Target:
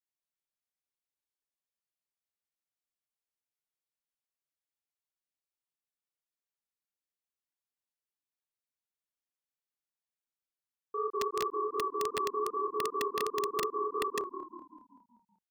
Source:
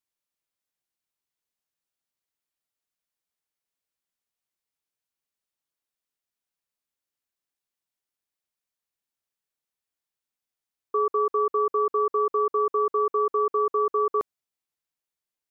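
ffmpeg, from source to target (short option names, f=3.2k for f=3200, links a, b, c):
-filter_complex "[0:a]flanger=delay=22.5:depth=5.7:speed=2.7,asplit=7[a][b][c][d][e][f][g];[b]adelay=191,afreqshift=-36,volume=-8dB[h];[c]adelay=382,afreqshift=-72,volume=-14dB[i];[d]adelay=573,afreqshift=-108,volume=-20dB[j];[e]adelay=764,afreqshift=-144,volume=-26.1dB[k];[f]adelay=955,afreqshift=-180,volume=-32.1dB[l];[g]adelay=1146,afreqshift=-216,volume=-38.1dB[m];[a][h][i][j][k][l][m]amix=inputs=7:normalize=0,aeval=exprs='(mod(6.68*val(0)+1,2)-1)/6.68':c=same,volume=-7dB"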